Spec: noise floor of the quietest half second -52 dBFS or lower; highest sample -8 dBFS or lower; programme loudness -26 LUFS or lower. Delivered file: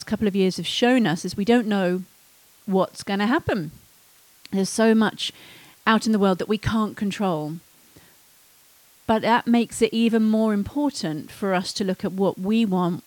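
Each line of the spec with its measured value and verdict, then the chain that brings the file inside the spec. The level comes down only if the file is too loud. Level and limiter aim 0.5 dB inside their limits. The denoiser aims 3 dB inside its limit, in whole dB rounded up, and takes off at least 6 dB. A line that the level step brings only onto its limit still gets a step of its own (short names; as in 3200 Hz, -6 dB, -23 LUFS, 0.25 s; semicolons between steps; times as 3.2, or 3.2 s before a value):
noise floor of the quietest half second -55 dBFS: OK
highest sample -4.0 dBFS: fail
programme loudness -22.5 LUFS: fail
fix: gain -4 dB; limiter -8.5 dBFS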